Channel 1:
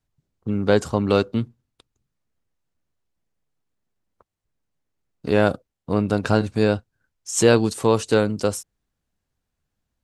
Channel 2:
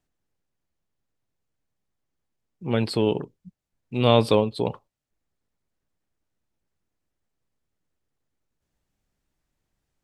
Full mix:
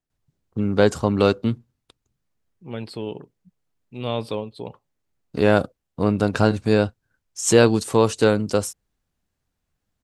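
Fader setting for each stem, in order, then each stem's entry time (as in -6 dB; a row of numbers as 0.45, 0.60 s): +1.0, -8.5 dB; 0.10, 0.00 s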